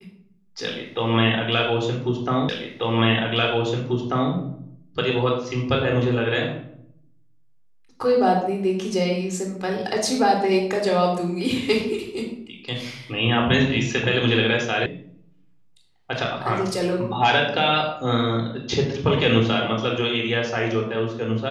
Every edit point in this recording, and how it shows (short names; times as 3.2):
2.49 repeat of the last 1.84 s
14.86 sound cut off